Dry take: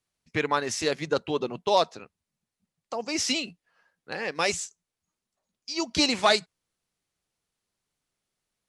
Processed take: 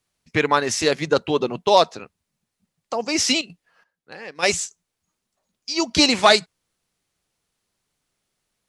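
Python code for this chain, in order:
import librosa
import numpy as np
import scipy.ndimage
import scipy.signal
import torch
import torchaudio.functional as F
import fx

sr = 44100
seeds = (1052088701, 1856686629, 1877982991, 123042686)

y = fx.step_gate(x, sr, bpm=176, pattern='xxx.......xx.x', floor_db=-12.0, edge_ms=4.5, at=(3.27, 4.42), fade=0.02)
y = y * librosa.db_to_amplitude(7.0)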